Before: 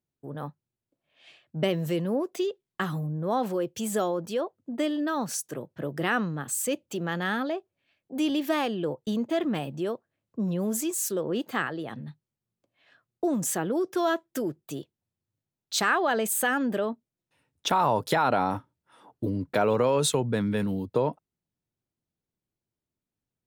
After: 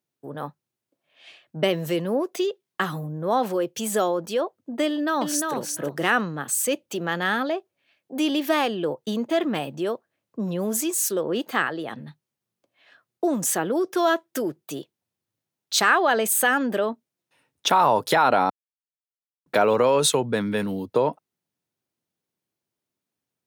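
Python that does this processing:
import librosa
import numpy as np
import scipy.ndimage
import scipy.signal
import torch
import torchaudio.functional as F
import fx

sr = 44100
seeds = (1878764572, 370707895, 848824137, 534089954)

y = fx.echo_throw(x, sr, start_s=4.86, length_s=0.68, ms=350, feedback_pct=10, wet_db=-4.0)
y = fx.edit(y, sr, fx.silence(start_s=18.5, length_s=0.96), tone=tone)
y = scipy.signal.sosfilt(scipy.signal.butter(2, 88.0, 'highpass', fs=sr, output='sos'), y)
y = fx.low_shelf(y, sr, hz=200.0, db=-11.0)
y = fx.notch(y, sr, hz=7500.0, q=21.0)
y = F.gain(torch.from_numpy(y), 6.0).numpy()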